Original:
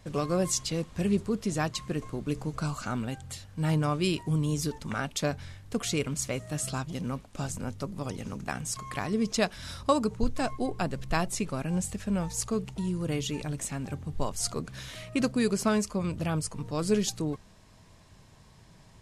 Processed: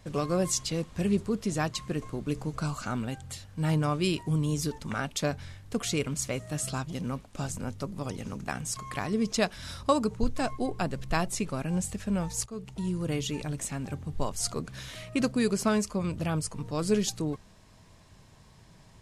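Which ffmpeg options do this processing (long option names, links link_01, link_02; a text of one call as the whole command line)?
ffmpeg -i in.wav -filter_complex "[0:a]asplit=2[link_01][link_02];[link_01]atrim=end=12.46,asetpts=PTS-STARTPTS,afade=type=out:start_time=12.456:duration=0.004:curve=hsin:silence=0.149624[link_03];[link_02]atrim=start=12.46,asetpts=PTS-STARTPTS,afade=type=in:duration=0.41:silence=0.149624[link_04];[link_03][link_04]concat=n=2:v=0:a=1" out.wav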